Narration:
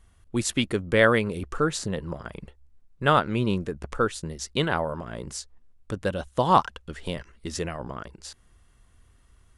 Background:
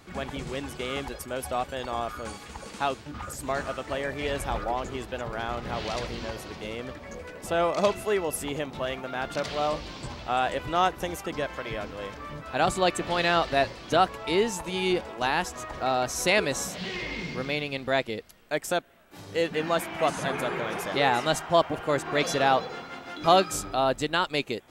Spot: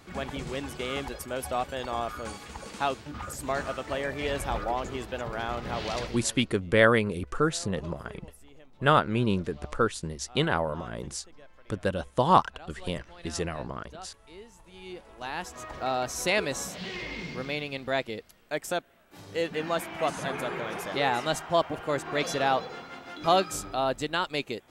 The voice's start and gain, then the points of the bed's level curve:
5.80 s, −1.0 dB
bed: 0:06.03 −0.5 dB
0:06.60 −23.5 dB
0:14.54 −23.5 dB
0:15.66 −3 dB

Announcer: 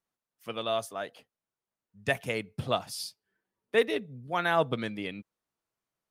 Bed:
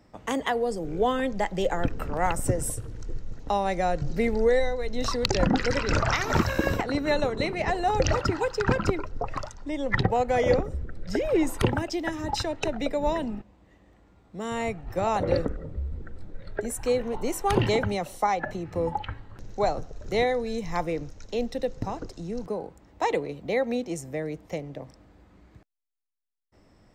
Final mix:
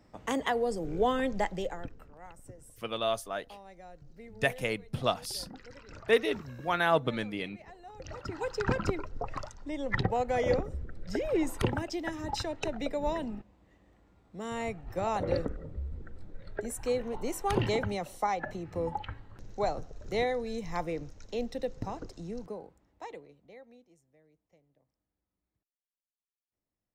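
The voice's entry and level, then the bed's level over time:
2.35 s, 0.0 dB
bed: 0:01.45 −3 dB
0:02.15 −24.5 dB
0:07.96 −24.5 dB
0:08.50 −5.5 dB
0:22.29 −5.5 dB
0:24.05 −33.5 dB

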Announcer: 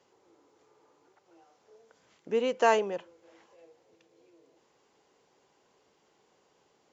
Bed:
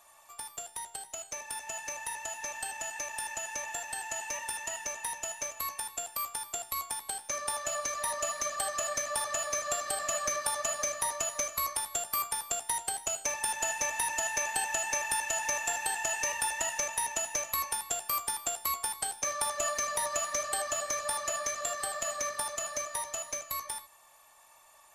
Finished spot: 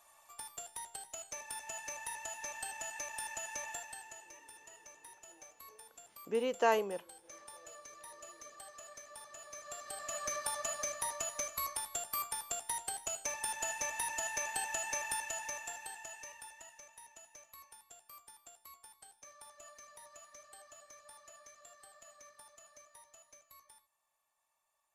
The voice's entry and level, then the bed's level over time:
4.00 s, −5.5 dB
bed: 0:03.71 −5 dB
0:04.32 −19 dB
0:09.36 −19 dB
0:10.34 −6 dB
0:15.09 −6 dB
0:16.81 −23.5 dB

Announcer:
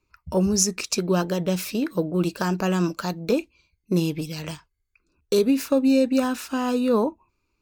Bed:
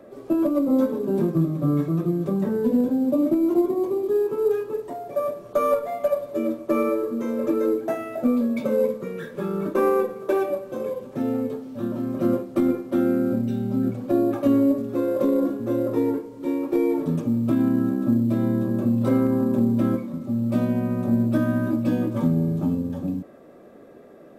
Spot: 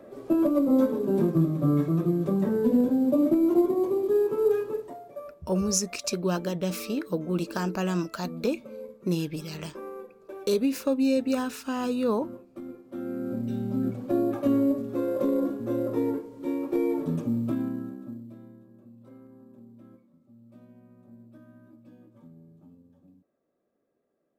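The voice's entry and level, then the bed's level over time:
5.15 s, −5.0 dB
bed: 0:04.69 −1.5 dB
0:05.37 −19.5 dB
0:12.71 −19.5 dB
0:13.54 −4.5 dB
0:17.39 −4.5 dB
0:18.66 −30 dB

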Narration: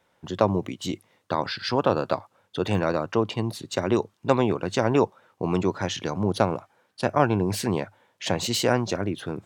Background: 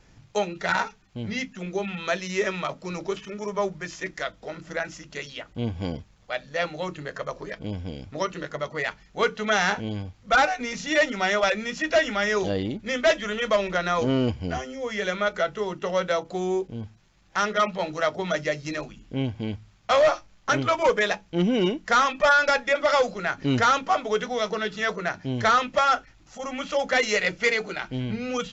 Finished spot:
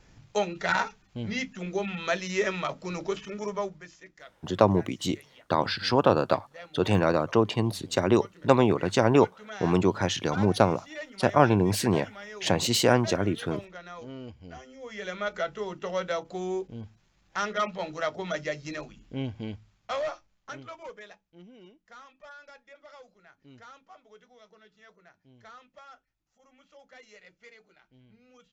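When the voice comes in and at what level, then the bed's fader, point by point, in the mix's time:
4.20 s, +1.0 dB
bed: 0:03.48 −1.5 dB
0:04.06 −18.5 dB
0:14.25 −18.5 dB
0:15.34 −5.5 dB
0:19.44 −5.5 dB
0:21.54 −29.5 dB

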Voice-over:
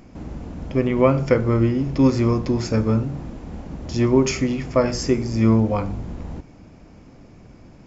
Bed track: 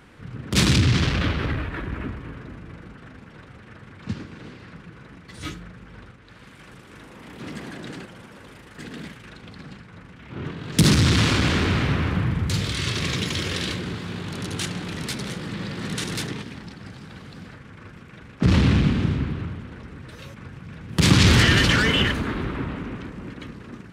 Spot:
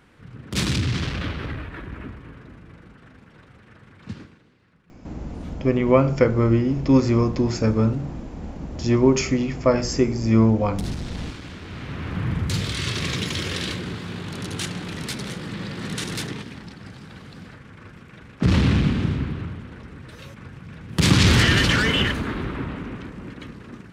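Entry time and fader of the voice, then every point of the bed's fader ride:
4.90 s, 0.0 dB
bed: 0:04.24 −5 dB
0:04.45 −18 dB
0:11.59 −18 dB
0:12.33 −0.5 dB

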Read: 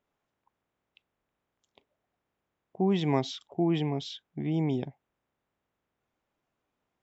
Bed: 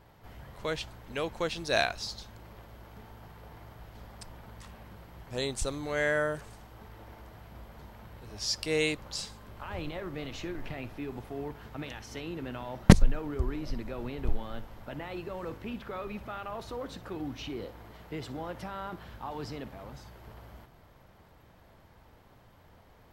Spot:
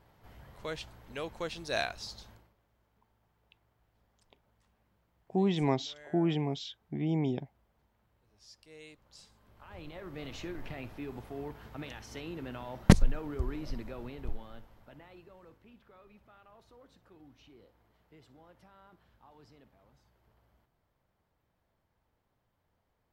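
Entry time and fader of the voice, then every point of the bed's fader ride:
2.55 s, −2.0 dB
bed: 0:02.32 −5.5 dB
0:02.57 −24.5 dB
0:08.78 −24.5 dB
0:10.28 −3 dB
0:13.76 −3 dB
0:15.68 −20 dB

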